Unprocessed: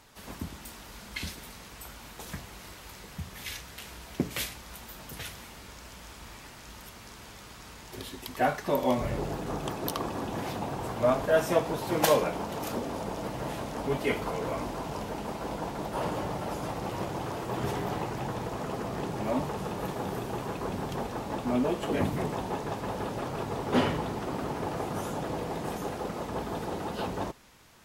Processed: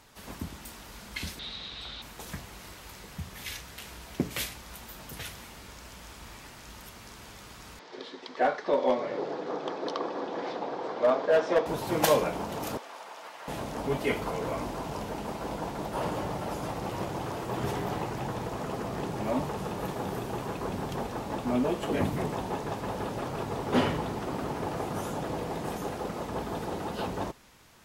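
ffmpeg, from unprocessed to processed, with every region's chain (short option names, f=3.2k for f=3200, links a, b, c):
-filter_complex "[0:a]asettb=1/sr,asplit=3[a][b][c];[a]atrim=end=1.394[d];[b]atrim=start=1.39:end=2.02,asetpts=PTS-STARTPTS,afade=t=in:d=0.004:c=qsin,afade=t=out:st=0.626:d=0.004:c=qsin,lowpass=f=3.8k:t=q:w=10,bandreject=f=940:w=18[e];[c]atrim=start=2.016[f];[d][e]acrossfade=d=0.004:c1=hsin:c2=qsin[g];[g][f]acrossfade=d=0.004:c1=qsin:c2=hsin,asettb=1/sr,asplit=3[h][i][j];[h]atrim=end=7.794[k];[i]atrim=start=7.79:end=11.66,asetpts=PTS-STARTPTS,afade=t=in:d=0.004:c=qsin,afade=t=out:st=3.866:d=0.004:c=qsin,highpass=f=220:w=0.5412,highpass=f=220:w=1.3066,equalizer=f=220:t=q:w=4:g=-7,equalizer=f=490:t=q:w=4:g=6,equalizer=f=2.7k:t=q:w=4:g=-6,lowpass=f=4.9k:w=0.5412,lowpass=f=4.9k:w=1.3066,volume=16.5dB,asoftclip=hard,volume=-16.5dB[l];[j]atrim=start=11.656[m];[k][l]acrossfade=d=0.004:c1=hsin:c2=qsin[n];[n][m]acrossfade=d=0.004:c1=qsin:c2=hsin,asettb=1/sr,asplit=3[o][p][q];[o]atrim=end=12.774[r];[p]atrim=start=12.77:end=13.48,asetpts=PTS-STARTPTS,afade=t=in:d=0.004:c=qsin,afade=t=out:st=0.706:d=0.004:c=qsin,highpass=1.1k,highshelf=f=5.5k:g=-9.5[s];[q]atrim=start=13.476[t];[r][s]acrossfade=d=0.004:c1=hsin:c2=qsin[u];[u][t]acrossfade=d=0.004:c1=qsin:c2=hsin"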